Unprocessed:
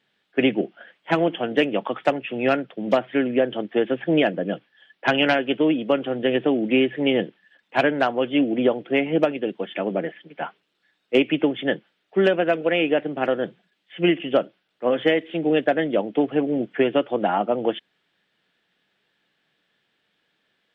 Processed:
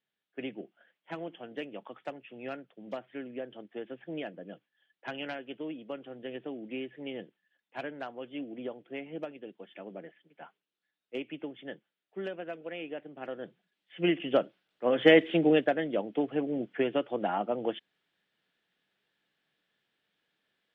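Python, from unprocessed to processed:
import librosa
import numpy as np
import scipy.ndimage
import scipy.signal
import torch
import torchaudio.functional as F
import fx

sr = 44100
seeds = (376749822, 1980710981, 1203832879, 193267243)

y = fx.gain(x, sr, db=fx.line((13.12, -19.0), (14.24, -6.0), (14.91, -6.0), (15.21, 3.5), (15.78, -9.0)))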